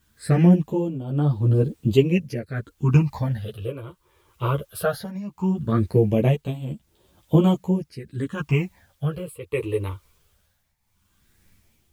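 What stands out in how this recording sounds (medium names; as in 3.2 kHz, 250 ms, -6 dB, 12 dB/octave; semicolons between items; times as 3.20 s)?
phasing stages 8, 0.18 Hz, lowest notch 210–2000 Hz; a quantiser's noise floor 12-bit, dither triangular; tremolo triangle 0.72 Hz, depth 85%; a shimmering, thickened sound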